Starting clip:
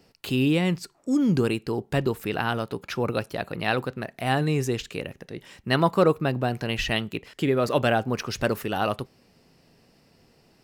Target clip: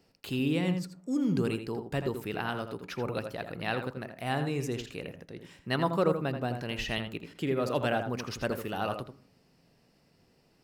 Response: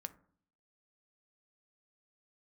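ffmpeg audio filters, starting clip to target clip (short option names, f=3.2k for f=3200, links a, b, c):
-filter_complex "[0:a]asplit=2[a][b];[1:a]atrim=start_sample=2205,highshelf=f=3.6k:g=-8,adelay=82[c];[b][c]afir=irnorm=-1:irlink=0,volume=-3dB[d];[a][d]amix=inputs=2:normalize=0,volume=-7.5dB"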